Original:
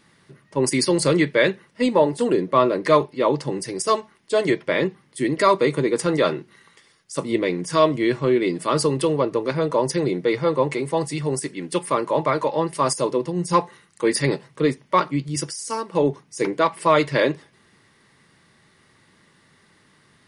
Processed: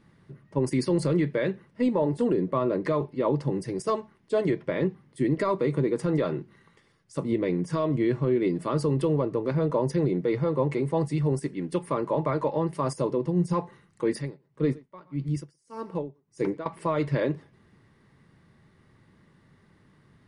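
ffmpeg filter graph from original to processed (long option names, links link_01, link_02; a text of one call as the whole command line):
ffmpeg -i in.wav -filter_complex "[0:a]asettb=1/sr,asplit=3[link_01][link_02][link_03];[link_01]atrim=end=14.114[link_04];[link_02]atrim=start=14.11:end=16.66,asetpts=PTS-STARTPTS,afade=type=in:duration=0.004:curve=qsin,afade=type=out:start_time=2.546:duration=0.004:curve=qsin,aecho=1:1:119:0.0794,atrim=end_sample=112455,aeval=exprs='val(0)*pow(10,-25*(0.5-0.5*cos(2*PI*1.7*n/s))/20)':channel_layout=same[link_05];[link_03]atrim=start=16.656[link_06];[link_04][link_05]acrossfade=duration=0.004:curve1=hsin:curve2=qsin[link_07];[link_07][link_06]acrossfade=duration=0.004:curve1=qsin:curve2=hsin,lowshelf=frequency=210:gain=11,alimiter=limit=-10.5dB:level=0:latency=1:release=104,highshelf=frequency=2500:gain=-11.5,volume=-4.5dB" out.wav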